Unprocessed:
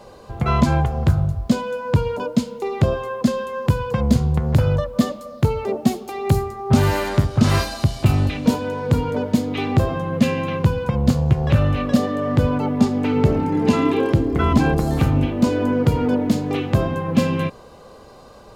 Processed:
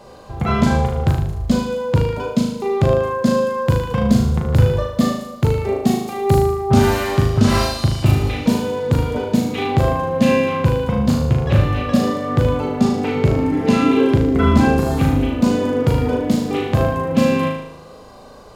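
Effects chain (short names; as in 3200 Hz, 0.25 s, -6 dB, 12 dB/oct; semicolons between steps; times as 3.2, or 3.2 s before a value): flutter echo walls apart 6.5 m, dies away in 0.71 s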